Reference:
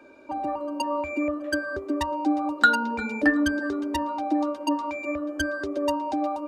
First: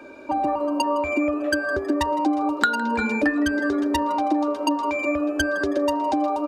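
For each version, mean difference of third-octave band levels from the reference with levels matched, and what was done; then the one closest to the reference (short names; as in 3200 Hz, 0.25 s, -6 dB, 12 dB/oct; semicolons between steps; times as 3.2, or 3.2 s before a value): 3.0 dB: compressor 4:1, threshold -28 dBFS, peak gain reduction 13 dB; on a send: frequency-shifting echo 0.16 s, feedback 43%, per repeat +120 Hz, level -19.5 dB; on the sum: gain +8.5 dB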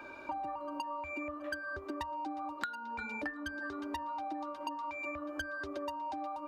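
4.0 dB: ten-band EQ 250 Hz -8 dB, 500 Hz -8 dB, 1000 Hz +4 dB, 8000 Hz -6 dB; compressor 16:1, threshold -43 dBFS, peak gain reduction 31.5 dB; gain +6.5 dB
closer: first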